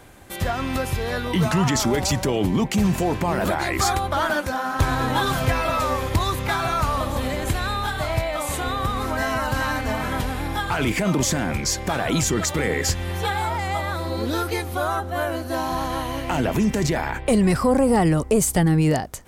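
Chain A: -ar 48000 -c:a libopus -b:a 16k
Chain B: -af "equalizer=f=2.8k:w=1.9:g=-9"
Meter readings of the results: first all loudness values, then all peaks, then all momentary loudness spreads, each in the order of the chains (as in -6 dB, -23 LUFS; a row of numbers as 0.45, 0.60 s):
-22.5, -23.0 LUFS; -7.0, -9.5 dBFS; 7, 7 LU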